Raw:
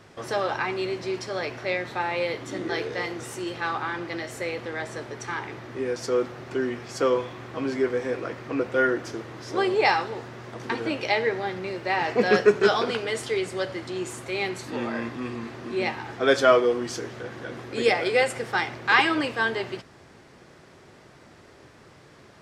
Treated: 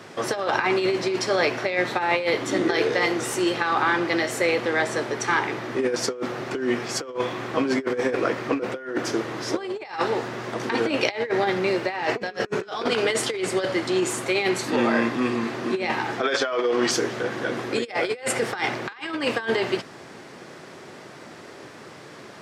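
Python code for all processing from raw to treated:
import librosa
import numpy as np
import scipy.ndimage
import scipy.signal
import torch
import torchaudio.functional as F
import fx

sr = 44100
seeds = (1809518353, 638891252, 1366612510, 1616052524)

y = fx.chain(x, sr, fx.lowpass(hz=5900.0, slope=12),
    fx.low_shelf(hz=420.0, db=-10.0),
    fx.over_compress(threshold_db=-30.0, ratio=-1.0), at=(16.21, 16.91))
y = scipy.signal.sosfilt(scipy.signal.butter(2, 170.0, 'highpass', fs=sr, output='sos'), y)
y = fx.over_compress(y, sr, threshold_db=-29.0, ratio=-0.5)
y = y * 10.0 ** (6.0 / 20.0)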